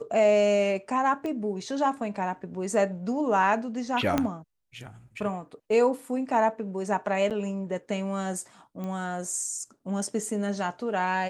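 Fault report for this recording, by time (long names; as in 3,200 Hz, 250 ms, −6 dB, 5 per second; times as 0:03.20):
0:01.26: click −22 dBFS
0:04.18: click −10 dBFS
0:07.30–0:07.31: drop-out 7.6 ms
0:08.84: click −24 dBFS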